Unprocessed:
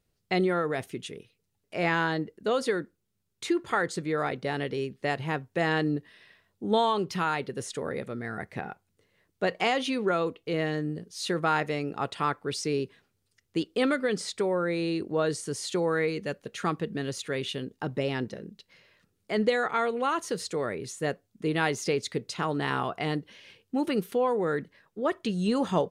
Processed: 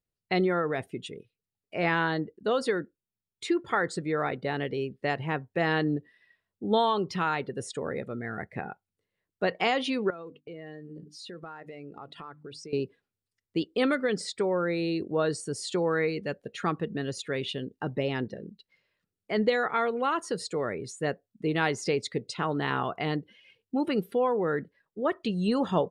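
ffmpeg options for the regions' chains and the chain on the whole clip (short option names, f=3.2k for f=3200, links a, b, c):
-filter_complex "[0:a]asettb=1/sr,asplit=3[a][b][c];[a]atrim=end=10.104[d];[b]atrim=start=10.1:end=12.73,asetpts=PTS-STARTPTS,afade=t=in:d=0.004:c=qsin,afade=t=out:st=2.626:d=0.004:c=qsin,agate=range=-33dB:threshold=-52dB:ratio=3:release=100:detection=peak,bandreject=f=50:t=h:w=6,bandreject=f=100:t=h:w=6,bandreject=f=150:t=h:w=6,bandreject=f=200:t=h:w=6,bandreject=f=250:t=h:w=6,bandreject=f=300:t=h:w=6,acompressor=threshold=-40dB:ratio=5:attack=3.2:release=140:knee=1:detection=peak[e];[c]atrim=start=12.726[f];[d][e]acrossfade=d=0.004:c1=hsin:c2=qsin[g];[g][f]acrossfade=d=0.004:c1=qsin:c2=hsin,bandreject=f=6.3k:w=13,afftdn=nr=15:nf=-46"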